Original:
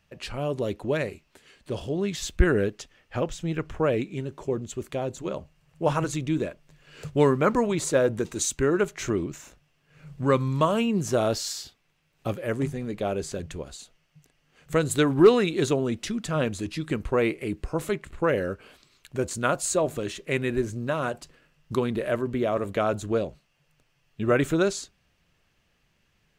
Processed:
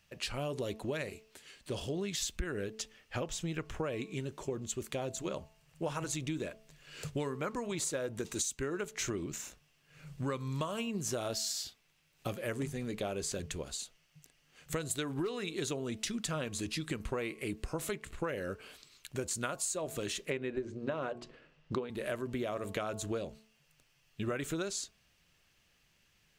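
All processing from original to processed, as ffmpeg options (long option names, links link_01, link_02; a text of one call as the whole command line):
ffmpeg -i in.wav -filter_complex "[0:a]asettb=1/sr,asplit=3[link_01][link_02][link_03];[link_01]atrim=end=20.304[link_04];[link_02]atrim=start=20.3:end=21.9,asetpts=PTS-STARTPTS,afade=type=in:duration=0.004:curve=qsin,afade=type=out:start_time=1.596:duration=0.004:curve=qsin,lowpass=3600,equalizer=frequency=410:width=0.59:gain=8.5,bandreject=frequency=60:width_type=h:width=6,bandreject=frequency=120:width_type=h:width=6,bandreject=frequency=180:width_type=h:width=6,bandreject=frequency=240:width_type=h:width=6,bandreject=frequency=300:width_type=h:width=6,bandreject=frequency=360:width_type=h:width=6,bandreject=frequency=420:width_type=h:width=6[link_05];[link_03]atrim=start=21.896[link_06];[link_04][link_05]acrossfade=duration=0.004:curve1=hsin:curve2=qsin[link_07];[link_07][link_06]acrossfade=duration=0.004:curve1=qsin:curve2=hsin,highshelf=frequency=2300:gain=9.5,bandreject=frequency=219.2:width_type=h:width=4,bandreject=frequency=438.4:width_type=h:width=4,bandreject=frequency=657.6:width_type=h:width=4,bandreject=frequency=876.8:width_type=h:width=4,bandreject=frequency=1096:width_type=h:width=4,acompressor=threshold=-27dB:ratio=16,volume=-5dB" out.wav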